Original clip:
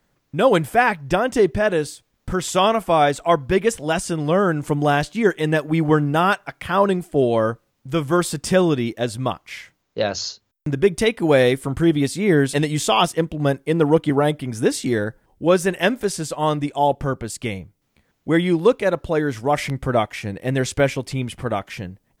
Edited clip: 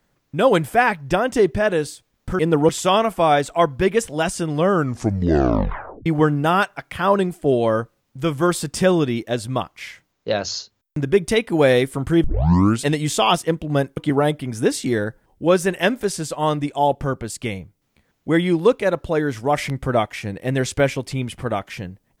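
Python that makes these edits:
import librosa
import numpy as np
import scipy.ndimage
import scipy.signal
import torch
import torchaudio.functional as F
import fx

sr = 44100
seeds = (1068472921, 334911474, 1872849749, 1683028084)

y = fx.edit(x, sr, fx.tape_stop(start_s=4.39, length_s=1.37),
    fx.tape_start(start_s=11.94, length_s=0.59),
    fx.move(start_s=13.67, length_s=0.3, to_s=2.39), tone=tone)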